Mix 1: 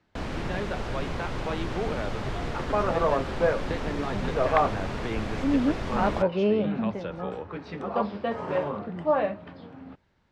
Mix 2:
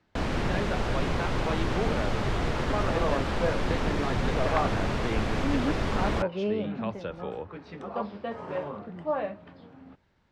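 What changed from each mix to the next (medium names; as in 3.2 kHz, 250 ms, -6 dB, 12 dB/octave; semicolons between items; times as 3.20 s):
first sound +4.0 dB; second sound -5.5 dB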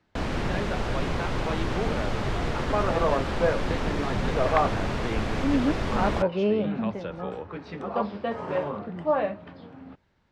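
second sound +5.0 dB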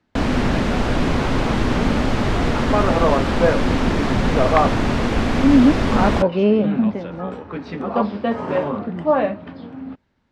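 first sound +8.0 dB; second sound +6.5 dB; master: add peaking EQ 250 Hz +8 dB 0.4 oct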